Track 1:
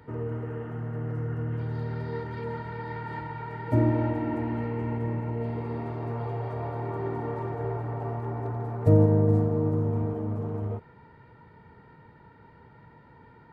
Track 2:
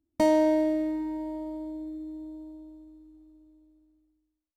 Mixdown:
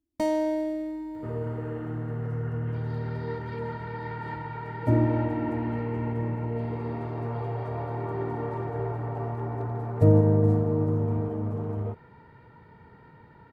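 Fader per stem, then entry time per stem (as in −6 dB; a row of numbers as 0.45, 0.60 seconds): +0.5, −4.0 decibels; 1.15, 0.00 seconds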